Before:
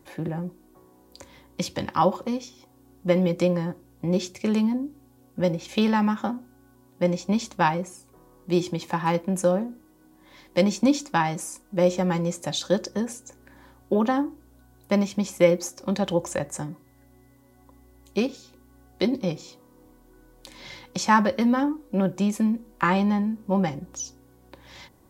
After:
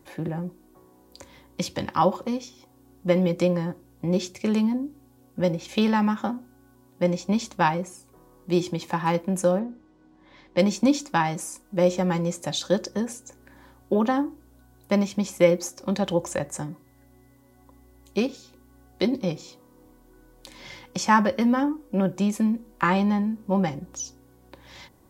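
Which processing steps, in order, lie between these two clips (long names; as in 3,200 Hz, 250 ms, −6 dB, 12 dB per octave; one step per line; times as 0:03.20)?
0:09.59–0:10.59: high-frequency loss of the air 140 metres
0:20.58–0:22.11: notch filter 4,000 Hz, Q 9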